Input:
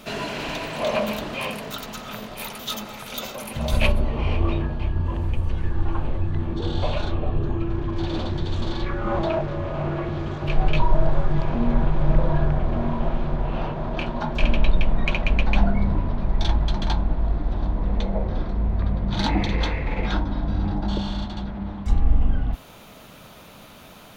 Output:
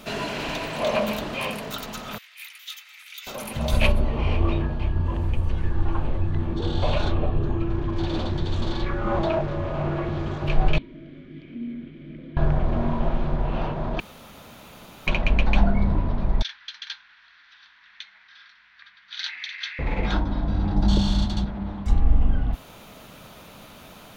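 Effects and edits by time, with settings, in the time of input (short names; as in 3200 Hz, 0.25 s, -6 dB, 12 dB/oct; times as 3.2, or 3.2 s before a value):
2.18–3.27 ladder high-pass 1800 Hz, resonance 50%
6.82–7.26 fast leveller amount 50%
10.78–12.37 vowel filter i
14–15.07 room tone
16.42–19.79 elliptic band-pass 1600–5800 Hz, stop band 50 dB
20.76–21.45 tone controls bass +7 dB, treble +12 dB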